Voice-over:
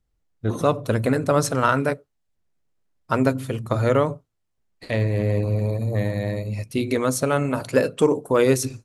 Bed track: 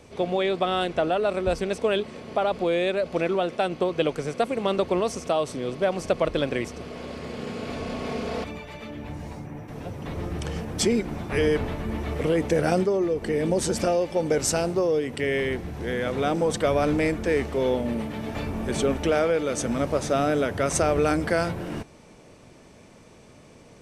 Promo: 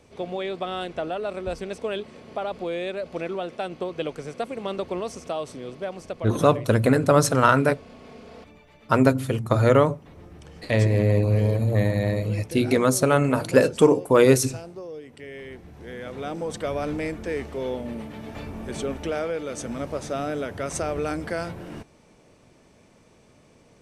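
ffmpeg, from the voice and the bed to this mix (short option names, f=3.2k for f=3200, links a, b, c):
-filter_complex "[0:a]adelay=5800,volume=2dB[a];[1:a]volume=3.5dB,afade=t=out:st=5.49:d=0.98:silence=0.354813,afade=t=in:st=15.34:d=1.38:silence=0.354813[b];[a][b]amix=inputs=2:normalize=0"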